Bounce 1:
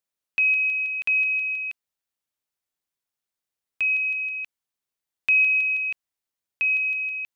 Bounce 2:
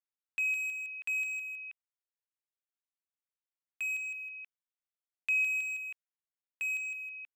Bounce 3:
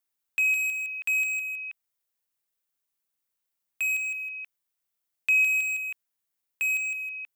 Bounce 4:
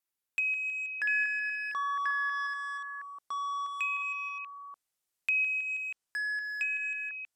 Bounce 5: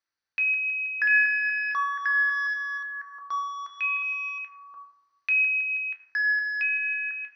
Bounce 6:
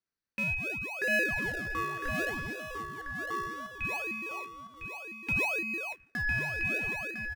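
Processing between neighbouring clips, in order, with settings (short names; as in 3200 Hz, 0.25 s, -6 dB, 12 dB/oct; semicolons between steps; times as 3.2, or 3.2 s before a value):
Wiener smoothing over 9 samples; HPF 1400 Hz 6 dB/oct; gain -8.5 dB
high shelf 10000 Hz +10.5 dB; gain +7 dB
echoes that change speed 0.447 s, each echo -7 st, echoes 2; treble ducked by the level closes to 2400 Hz, closed at -23 dBFS; gain -3.5 dB
rippled Chebyshev low-pass 6100 Hz, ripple 9 dB; on a send at -3 dB: reverb RT60 0.95 s, pre-delay 5 ms; on the sum: gain +8 dB
in parallel at -5.5 dB: decimation with a swept rate 38×, swing 100% 0.66 Hz; on the sum: echo 1.005 s -7.5 dB; gain -8 dB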